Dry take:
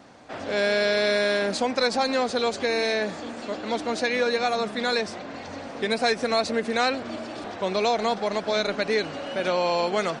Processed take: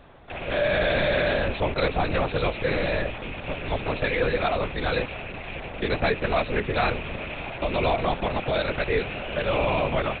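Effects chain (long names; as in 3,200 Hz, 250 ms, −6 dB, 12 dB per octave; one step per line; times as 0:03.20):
loose part that buzzes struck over −43 dBFS, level −22 dBFS
linear-prediction vocoder at 8 kHz whisper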